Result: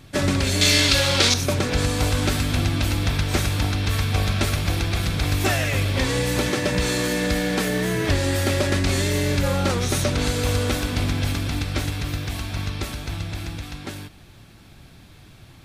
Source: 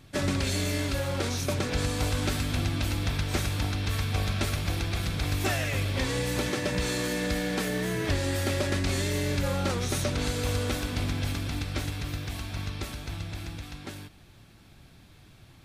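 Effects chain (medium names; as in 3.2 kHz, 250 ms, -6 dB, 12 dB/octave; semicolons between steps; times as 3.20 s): 0.61–1.34 s: peaking EQ 4.2 kHz +14 dB 2.4 oct; trim +6.5 dB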